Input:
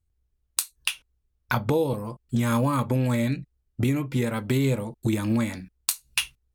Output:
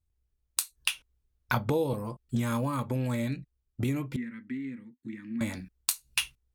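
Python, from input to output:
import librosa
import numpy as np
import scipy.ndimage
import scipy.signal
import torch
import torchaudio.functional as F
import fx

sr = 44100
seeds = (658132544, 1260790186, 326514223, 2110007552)

y = fx.rider(x, sr, range_db=10, speed_s=0.5)
y = fx.double_bandpass(y, sr, hz=690.0, octaves=2.9, at=(4.16, 5.41))
y = y * librosa.db_to_amplitude(-4.5)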